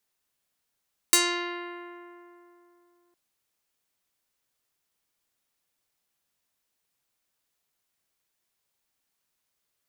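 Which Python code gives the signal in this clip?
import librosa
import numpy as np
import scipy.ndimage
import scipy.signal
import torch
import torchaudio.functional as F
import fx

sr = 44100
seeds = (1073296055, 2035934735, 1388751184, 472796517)

y = fx.pluck(sr, length_s=2.01, note=65, decay_s=3.03, pick=0.42, brightness='medium')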